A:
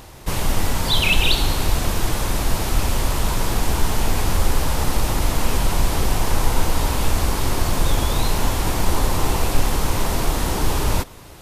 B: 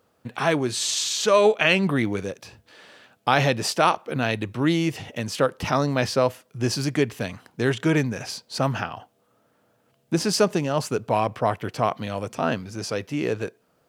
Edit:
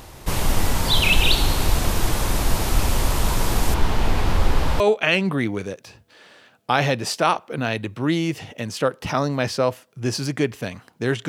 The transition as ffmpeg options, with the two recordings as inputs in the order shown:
ffmpeg -i cue0.wav -i cue1.wav -filter_complex "[0:a]asettb=1/sr,asplit=3[link_01][link_02][link_03];[link_01]atrim=end=3.744[link_04];[link_02]atrim=start=3.74:end=4.8,asetpts=PTS-STARTPTS,afade=type=in:duration=0.004:curve=qsin,afade=type=out:start_time=1.056:duration=0.004:curve=qsin,acrossover=split=4600[link_05][link_06];[link_06]acompressor=threshold=-45dB:ratio=4:attack=1:release=60[link_07];[link_05][link_07]amix=inputs=2:normalize=0[link_08];[link_03]atrim=start=4.796[link_09];[link_04][link_08]acrossfade=duration=0.004:curve1=hsin:curve2=qsin[link_10];[link_10][link_09]acrossfade=duration=0.004:curve1=qsin:curve2=hsin,apad=whole_dur=11.28,atrim=end=11.28,atrim=end=4.802[link_11];[1:a]atrim=start=1.378:end=7.86[link_12];[link_11][link_12]acrossfade=duration=0.004:curve1=hsin:curve2=hsin" out.wav

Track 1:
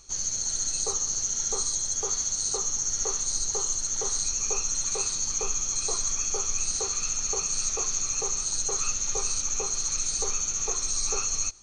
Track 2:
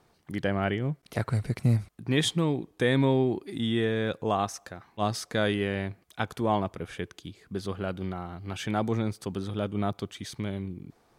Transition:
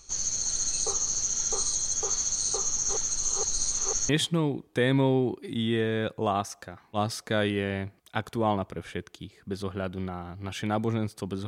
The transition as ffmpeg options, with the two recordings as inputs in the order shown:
ffmpeg -i cue0.wav -i cue1.wav -filter_complex "[0:a]apad=whole_dur=11.47,atrim=end=11.47,asplit=2[link_01][link_02];[link_01]atrim=end=2.892[link_03];[link_02]atrim=start=2.888:end=4.092,asetpts=PTS-STARTPTS,areverse[link_04];[1:a]atrim=start=2.128:end=9.51[link_05];[link_03][link_04]acrossfade=duration=0.004:curve1=hsin:curve2=hsin[link_06];[link_06][link_05]acrossfade=duration=0.004:curve1=hsin:curve2=hsin" out.wav

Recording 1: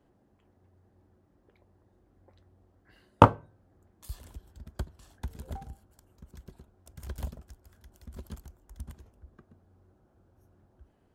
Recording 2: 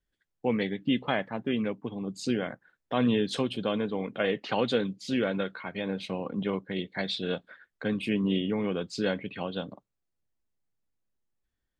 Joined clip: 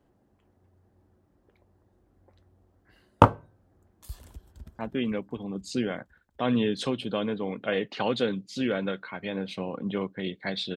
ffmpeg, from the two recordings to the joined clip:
ffmpeg -i cue0.wav -i cue1.wav -filter_complex "[0:a]apad=whole_dur=10.76,atrim=end=10.76,atrim=end=4.792[link_01];[1:a]atrim=start=1.308:end=7.28[link_02];[link_01][link_02]acrossfade=duration=0.004:curve1=hsin:curve2=hsin,asplit=2[link_03][link_04];[link_04]afade=type=in:start_time=4.3:duration=0.01,afade=type=out:start_time=4.79:duration=0.01,aecho=0:1:250|500|750|1000|1250|1500|1750|2000|2250|2500|2750|3000:0.251189|0.188391|0.141294|0.10597|0.0794777|0.0596082|0.0447062|0.0335296|0.0251472|0.0188604|0.0141453|0.010609[link_05];[link_03][link_05]amix=inputs=2:normalize=0" out.wav

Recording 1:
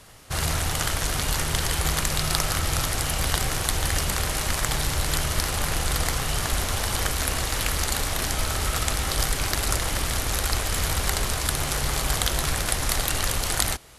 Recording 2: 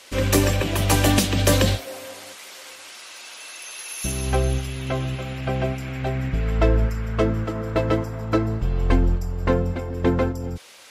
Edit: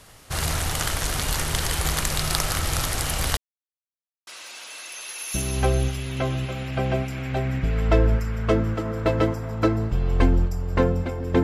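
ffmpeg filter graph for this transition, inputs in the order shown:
ffmpeg -i cue0.wav -i cue1.wav -filter_complex "[0:a]apad=whole_dur=11.43,atrim=end=11.43,asplit=2[link_01][link_02];[link_01]atrim=end=3.37,asetpts=PTS-STARTPTS,afade=type=out:start_time=3.366:duration=0.004:curve=hsin[link_03];[link_02]atrim=start=3.37:end=4.27,asetpts=PTS-STARTPTS,volume=0[link_04];[1:a]atrim=start=2.97:end=10.13,asetpts=PTS-STARTPTS,afade=type=in:duration=0.004:curve=hsin[link_05];[link_03][link_04][link_05]concat=n=3:v=0:a=1" out.wav

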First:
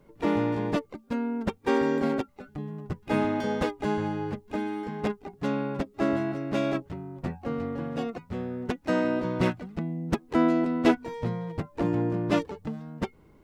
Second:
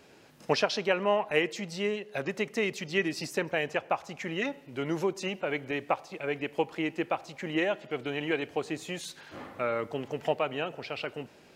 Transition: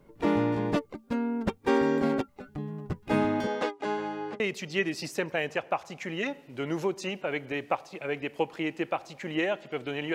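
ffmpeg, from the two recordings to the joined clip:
ffmpeg -i cue0.wav -i cue1.wav -filter_complex "[0:a]asettb=1/sr,asplit=3[link_01][link_02][link_03];[link_01]atrim=end=3.474[link_04];[link_02]atrim=start=3.47:end=4.4,asetpts=PTS-STARTPTS,afade=type=in:duration=0.004:curve=qsin,afade=type=out:start_time=0.926:duration=0.004:curve=qsin,highpass=370,lowpass=7100[link_05];[link_03]atrim=start=4.396[link_06];[link_04][link_05]acrossfade=duration=0.004:curve1=hsin:curve2=qsin[link_07];[link_07][link_06]acrossfade=duration=0.004:curve1=qsin:curve2=hsin,apad=whole_dur=10.14,atrim=end=10.14,atrim=end=4.402[link_08];[1:a]atrim=start=2.588:end=8.33[link_09];[link_08][link_09]acrossfade=duration=0.004:curve1=hsin:curve2=hsin" out.wav

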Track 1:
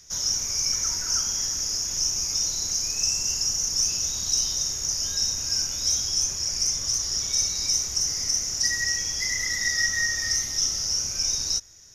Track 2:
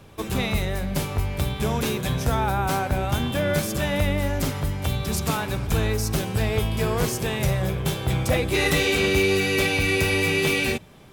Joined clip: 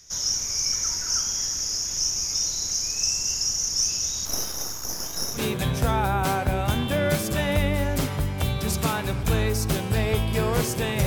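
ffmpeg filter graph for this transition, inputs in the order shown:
ffmpeg -i cue0.wav -i cue1.wav -filter_complex "[0:a]asettb=1/sr,asplit=3[link_01][link_02][link_03];[link_01]atrim=end=4.254[link_04];[link_02]atrim=start=4.25:end=5.44,asetpts=PTS-STARTPTS,afade=type=in:duration=0.004:curve=qsin,afade=type=out:start_time=1.186:duration=0.004:curve=qsin,aeval=exprs='max(val(0),0)':channel_layout=same[link_05];[link_03]atrim=start=5.436[link_06];[link_04][link_05]acrossfade=duration=0.004:curve1=hsin:curve2=qsin[link_07];[link_07][link_06]acrossfade=duration=0.004:curve1=qsin:curve2=hsin,apad=whole_dur=11.06,atrim=end=11.06,atrim=end=5.44,asetpts=PTS-STARTPTS[link_08];[1:a]atrim=start=1.76:end=7.5,asetpts=PTS-STARTPTS[link_09];[link_08][link_09]acrossfade=duration=0.12:curve1=tri:curve2=tri" out.wav

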